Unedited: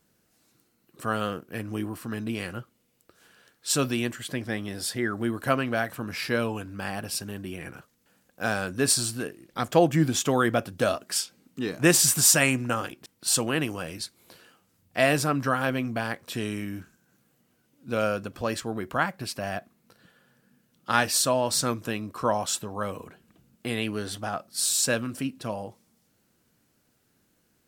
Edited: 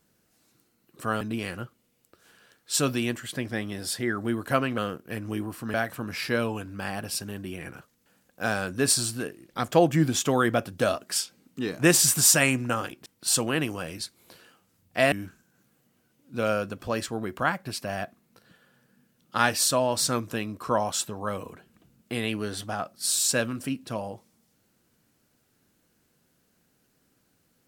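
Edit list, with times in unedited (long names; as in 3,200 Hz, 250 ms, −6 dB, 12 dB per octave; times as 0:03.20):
0:01.21–0:02.17: move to 0:05.74
0:15.12–0:16.66: remove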